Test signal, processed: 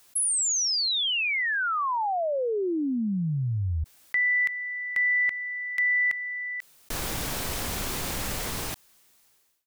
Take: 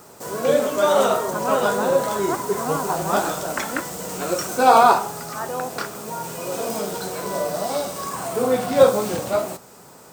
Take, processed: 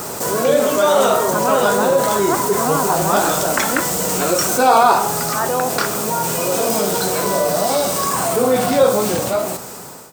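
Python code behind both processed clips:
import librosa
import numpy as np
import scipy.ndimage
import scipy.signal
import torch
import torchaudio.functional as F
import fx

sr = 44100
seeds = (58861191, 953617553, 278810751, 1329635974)

y = fx.fade_out_tail(x, sr, length_s=1.39)
y = fx.high_shelf(y, sr, hz=5000.0, db=4.0)
y = fx.env_flatten(y, sr, amount_pct=50)
y = F.gain(torch.from_numpy(y), -1.0).numpy()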